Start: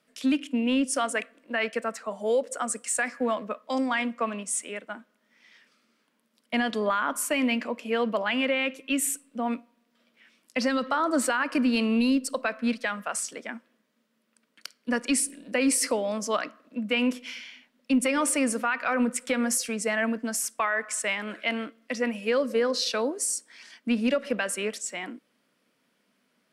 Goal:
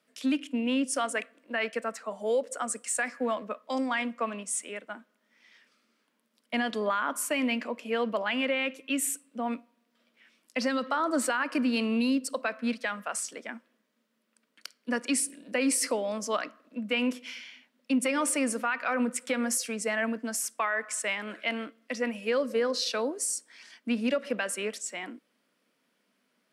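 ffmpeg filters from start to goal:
ffmpeg -i in.wav -af "highpass=170,volume=-2.5dB" out.wav

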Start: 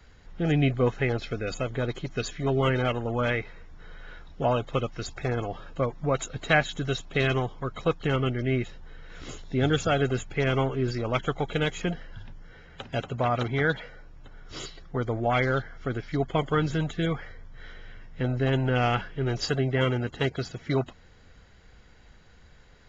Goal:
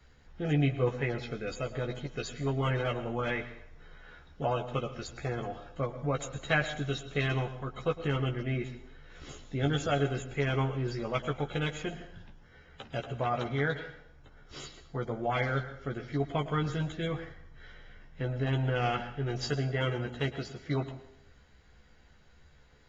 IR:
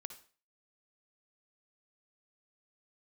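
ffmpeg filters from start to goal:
-filter_complex "[0:a]asplit=2[link_01][link_02];[1:a]atrim=start_sample=2205,asetrate=25578,aresample=44100,adelay=14[link_03];[link_02][link_03]afir=irnorm=-1:irlink=0,volume=-2dB[link_04];[link_01][link_04]amix=inputs=2:normalize=0,volume=-7dB"

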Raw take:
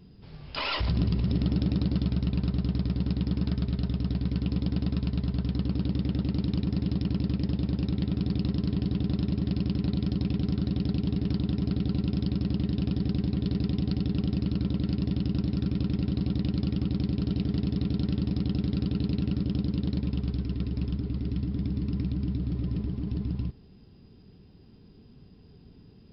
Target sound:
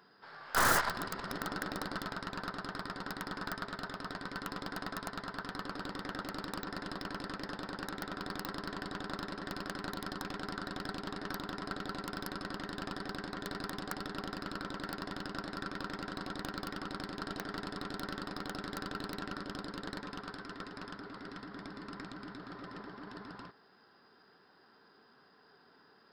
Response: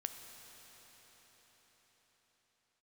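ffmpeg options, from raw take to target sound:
-af "highpass=1000,aeval=exprs='(mod(25.1*val(0)+1,2)-1)/25.1':channel_layout=same,aeval=exprs='0.0422*(cos(1*acos(clip(val(0)/0.0422,-1,1)))-cos(1*PI/2))+0.00531*(cos(6*acos(clip(val(0)/0.0422,-1,1)))-cos(6*PI/2))+0.000944*(cos(8*acos(clip(val(0)/0.0422,-1,1)))-cos(8*PI/2))':channel_layout=same,highshelf=frequency=2000:width_type=q:width=3:gain=-8,volume=9.5dB"

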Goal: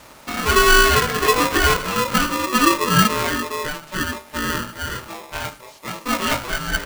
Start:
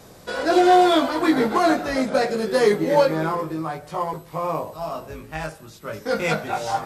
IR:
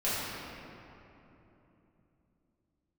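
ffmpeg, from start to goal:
-filter_complex "[0:a]acrossover=split=4000[link_01][link_02];[link_02]acompressor=threshold=-49dB:ratio=4:attack=1:release=60[link_03];[link_01][link_03]amix=inputs=2:normalize=0,asettb=1/sr,asplit=3[link_04][link_05][link_06];[link_04]atrim=end=0.904[link_07];[link_05]atrim=start=0.9:end=1.81,asetpts=PTS-STARTPTS,afade=type=in:duration=0.004:curve=qsin,afade=type=out:start_time=0.906:duration=0.004:curve=qsin,aeval=exprs='0.398*(cos(1*acos(clip(val(0)/0.398,-1,1)))-cos(1*PI/2))+0.0178*(cos(6*acos(clip(val(0)/0.398,-1,1)))-cos(6*PI/2))':channel_layout=same[link_08];[link_06]atrim=start=1.806[link_09];[link_07][link_08]acrossfade=duration=0.004:curve1=hsin:curve2=qsin[link_10];[link_10][link_09]acrossfade=duration=0.004:curve1=qsin:curve2=hsin,aeval=exprs='val(0)*sgn(sin(2*PI*750*n/s))':channel_layout=same,volume=1.5dB"

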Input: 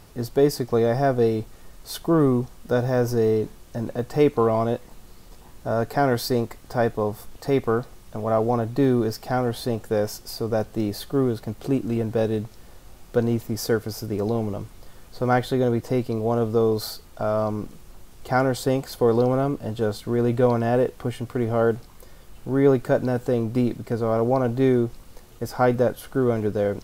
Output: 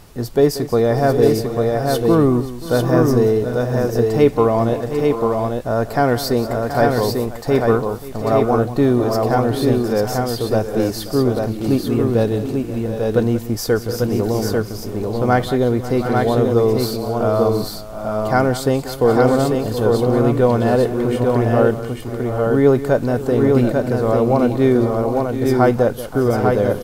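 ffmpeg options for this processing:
ffmpeg -i in.wav -af "aecho=1:1:184|532|724|765|844:0.2|0.126|0.251|0.211|0.668,volume=4.5dB" out.wav

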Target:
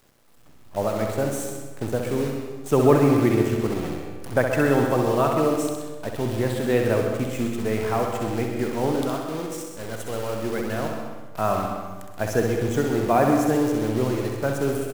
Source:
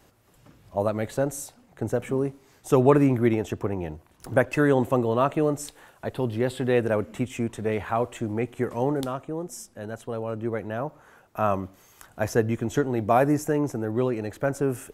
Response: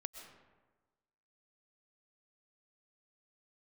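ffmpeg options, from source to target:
-filter_complex "[0:a]asettb=1/sr,asplit=3[link_01][link_02][link_03];[link_01]atrim=end=9.924[link_04];[link_02]atrim=start=9.92:end=10.78,asetpts=PTS-STARTPTS,afade=type=in:duration=0.004:curve=qsin,afade=type=out:start_time=0.856:duration=0.004:curve=qsin,highshelf=frequency=2700:gain=11[link_05];[link_03]atrim=start=10.776[link_06];[link_04][link_05]acrossfade=duration=0.004:curve1=hsin:curve2=qsin[link_07];[link_07][link_06]acrossfade=duration=0.004:curve1=qsin:curve2=hsin,acrusher=bits=7:dc=4:mix=0:aa=0.000001,aecho=1:1:64|128|192|256|320|384|448|512:0.501|0.301|0.18|0.108|0.065|0.039|0.0234|0.014[link_08];[1:a]atrim=start_sample=2205[link_09];[link_08][link_09]afir=irnorm=-1:irlink=0,volume=3.5dB"

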